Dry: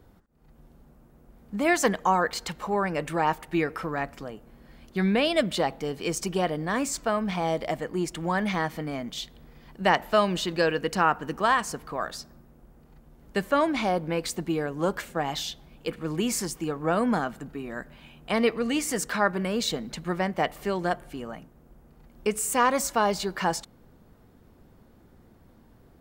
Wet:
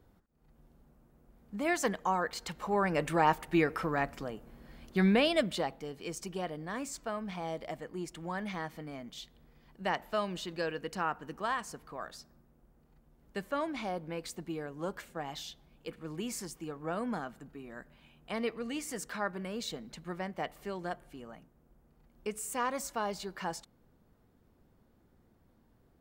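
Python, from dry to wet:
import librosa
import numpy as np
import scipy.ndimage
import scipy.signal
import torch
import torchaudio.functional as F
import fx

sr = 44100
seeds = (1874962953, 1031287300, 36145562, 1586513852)

y = fx.gain(x, sr, db=fx.line((2.35, -8.0), (2.95, -1.5), (5.08, -1.5), (5.9, -11.0)))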